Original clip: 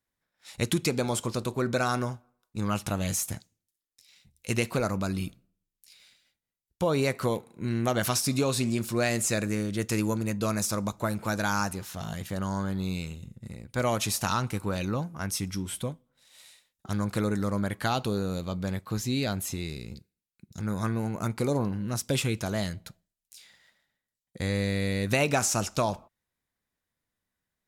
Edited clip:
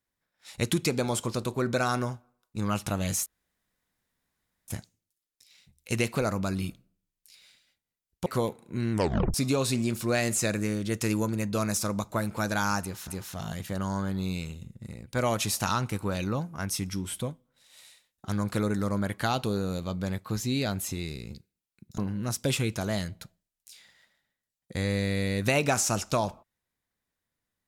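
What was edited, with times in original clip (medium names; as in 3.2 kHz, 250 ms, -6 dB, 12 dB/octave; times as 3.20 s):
3.26 s: insert room tone 1.42 s
6.84–7.14 s: delete
7.80 s: tape stop 0.42 s
11.69–11.96 s: loop, 2 plays
20.59–21.63 s: delete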